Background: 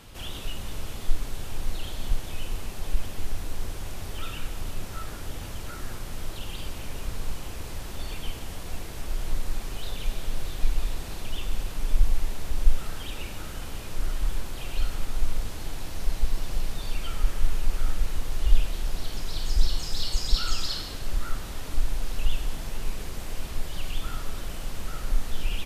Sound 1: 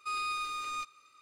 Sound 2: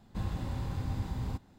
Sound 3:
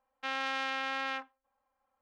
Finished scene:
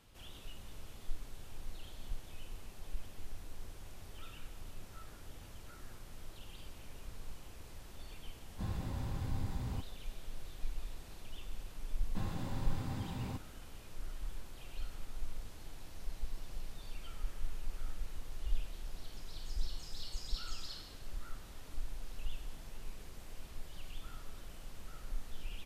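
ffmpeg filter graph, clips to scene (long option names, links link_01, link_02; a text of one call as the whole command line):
ffmpeg -i bed.wav -i cue0.wav -i cue1.wav -filter_complex "[2:a]asplit=2[link_01][link_02];[0:a]volume=-15.5dB[link_03];[link_02]highpass=110[link_04];[link_01]atrim=end=1.58,asetpts=PTS-STARTPTS,volume=-4.5dB,afade=type=in:duration=0.004:curve=hsin,afade=type=out:start_time=1.576:duration=0.004:curve=hsin,adelay=8440[link_05];[link_04]atrim=end=1.58,asetpts=PTS-STARTPTS,volume=-2dB,afade=type=in:duration=0.004:curve=hsin,afade=type=out:start_time=1.576:duration=0.004:curve=hsin,adelay=12000[link_06];[link_03][link_05][link_06]amix=inputs=3:normalize=0" out.wav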